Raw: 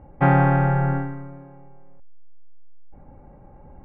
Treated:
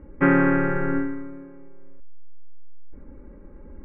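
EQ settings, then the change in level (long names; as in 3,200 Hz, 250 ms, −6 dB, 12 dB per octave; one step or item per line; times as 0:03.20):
low-pass filter 2,400 Hz 24 dB per octave
phaser with its sweep stopped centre 310 Hz, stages 4
+6.0 dB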